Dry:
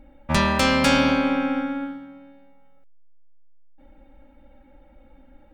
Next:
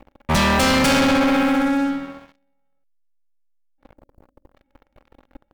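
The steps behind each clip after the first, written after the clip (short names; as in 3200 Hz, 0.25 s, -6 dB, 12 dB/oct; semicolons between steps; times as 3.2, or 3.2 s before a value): spectral delete 3.97–4.55, 670–4400 Hz; sample leveller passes 5; gain -7.5 dB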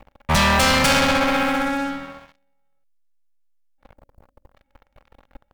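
bell 310 Hz -9.5 dB 1.1 oct; gain +2 dB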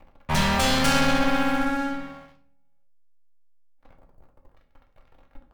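shoebox room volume 51 m³, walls mixed, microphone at 0.5 m; gain -7 dB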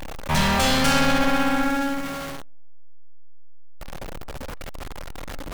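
zero-crossing step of -27 dBFS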